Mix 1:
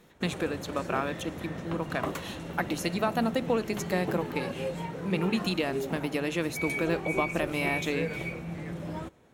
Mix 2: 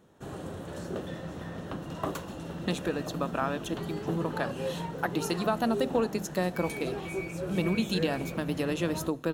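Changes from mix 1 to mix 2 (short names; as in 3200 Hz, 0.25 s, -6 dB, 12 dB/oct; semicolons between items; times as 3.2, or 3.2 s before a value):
speech: entry +2.45 s; master: add bell 2200 Hz -10 dB 0.31 oct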